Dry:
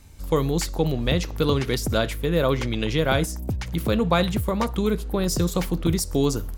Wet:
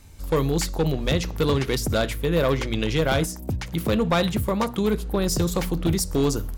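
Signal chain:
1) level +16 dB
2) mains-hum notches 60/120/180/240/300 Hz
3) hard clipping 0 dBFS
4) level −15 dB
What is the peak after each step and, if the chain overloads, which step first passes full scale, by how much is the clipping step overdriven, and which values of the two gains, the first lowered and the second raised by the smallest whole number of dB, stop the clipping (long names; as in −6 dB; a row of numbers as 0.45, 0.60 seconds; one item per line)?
+9.5, +9.5, 0.0, −15.0 dBFS
step 1, 9.5 dB
step 1 +6 dB, step 4 −5 dB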